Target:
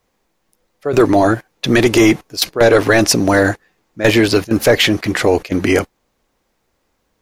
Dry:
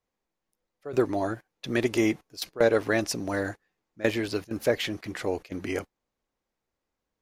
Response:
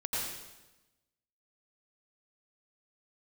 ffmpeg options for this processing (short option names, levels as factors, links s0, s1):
-af "apsyclip=12.6,volume=0.631"